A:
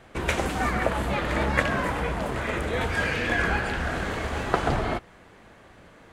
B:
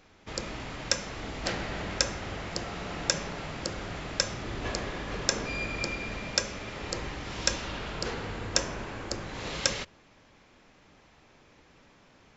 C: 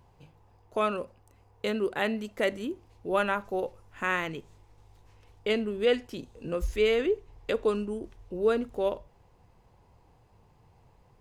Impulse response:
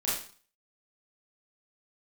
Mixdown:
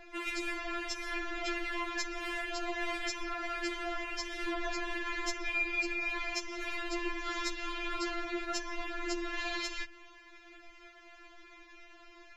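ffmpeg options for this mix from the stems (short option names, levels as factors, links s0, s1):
-filter_complex "[0:a]acrossover=split=1500[s0][s1];[s0]aeval=exprs='val(0)*(1-1/2+1/2*cos(2*PI*1.5*n/s))':c=same[s2];[s1]aeval=exprs='val(0)*(1-1/2-1/2*cos(2*PI*1.5*n/s))':c=same[s3];[s2][s3]amix=inputs=2:normalize=0,acrossover=split=160[s4][s5];[s5]acompressor=threshold=0.0251:ratio=6[s6];[s4][s6]amix=inputs=2:normalize=0,volume=0.794[s7];[1:a]lowshelf=f=420:g=8.5,volume=0.944[s8];[2:a]volume=0.355[s9];[s7][s8][s9]amix=inputs=3:normalize=0,equalizer=f=2100:w=0.75:g=10,acrossover=split=130[s10][s11];[s11]acompressor=threshold=0.0282:ratio=6[s12];[s10][s12]amix=inputs=2:normalize=0,afftfilt=real='re*4*eq(mod(b,16),0)':imag='im*4*eq(mod(b,16),0)':win_size=2048:overlap=0.75"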